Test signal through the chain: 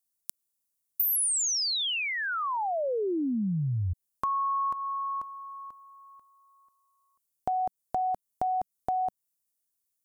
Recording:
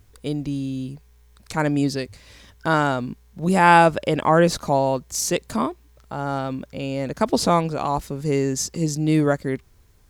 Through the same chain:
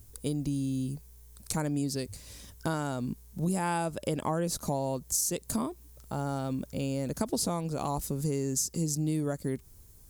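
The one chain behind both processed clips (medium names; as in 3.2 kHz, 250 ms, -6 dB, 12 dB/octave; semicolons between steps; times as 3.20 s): FFT filter 190 Hz 0 dB, 2 kHz -9 dB, 3.7 kHz -4 dB, 9.7 kHz +10 dB; compression 6:1, threshold -27 dBFS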